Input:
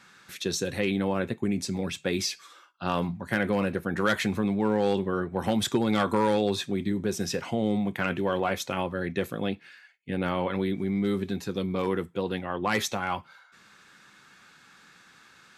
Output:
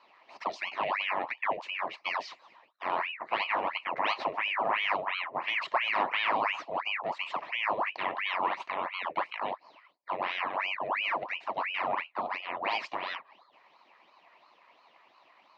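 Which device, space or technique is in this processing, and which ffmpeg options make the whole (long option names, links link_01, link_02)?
voice changer toy: -filter_complex "[0:a]asettb=1/sr,asplit=3[link_01][link_02][link_03];[link_01]atrim=end=11.394[link_04];[link_02]atrim=start=11.39:end=12.21,asetpts=PTS-STARTPTS,afade=type=in:duration=0.004:curve=qsin,afade=type=out:start_time=0.816:duration=0.004:curve=qsin,asplit=2[link_05][link_06];[link_06]adelay=26,volume=-12dB[link_07];[link_05][link_07]amix=inputs=2:normalize=0,atrim=end_sample=36162[link_08];[link_03]atrim=start=12.206[link_09];[link_04][link_08]acrossfade=duration=0.004:curve1=hsin:curve2=qsin[link_10];[link_10][link_09]acrossfade=duration=0.004:curve1=qsin:curve2=hsin,aeval=exprs='val(0)*sin(2*PI*1500*n/s+1500*0.85/2.9*sin(2*PI*2.9*n/s))':channel_layout=same,highpass=420,equalizer=frequency=450:width_type=q:width=4:gain=-7,equalizer=frequency=660:width_type=q:width=4:gain=3,equalizer=frequency=1000:width_type=q:width=4:gain=7,equalizer=frequency=1500:width_type=q:width=4:gain=-10,equalizer=frequency=3400:width_type=q:width=4:gain=-9,lowpass=frequency=3500:width=0.5412,lowpass=frequency=3500:width=1.3066"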